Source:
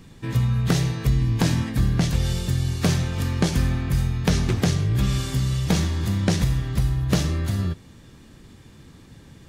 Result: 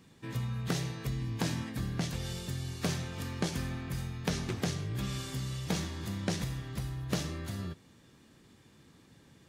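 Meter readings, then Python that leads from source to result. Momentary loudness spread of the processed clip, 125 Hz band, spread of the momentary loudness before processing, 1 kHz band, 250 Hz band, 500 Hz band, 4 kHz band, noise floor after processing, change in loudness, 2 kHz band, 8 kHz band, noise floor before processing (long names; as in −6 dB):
4 LU, −14.0 dB, 3 LU, −9.0 dB, −11.5 dB, −9.5 dB, −9.0 dB, −61 dBFS, −13.0 dB, −9.0 dB, −9.0 dB, −48 dBFS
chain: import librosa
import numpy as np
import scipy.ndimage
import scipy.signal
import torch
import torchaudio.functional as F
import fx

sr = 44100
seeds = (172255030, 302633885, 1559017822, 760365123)

y = fx.highpass(x, sr, hz=180.0, slope=6)
y = y * librosa.db_to_amplitude(-9.0)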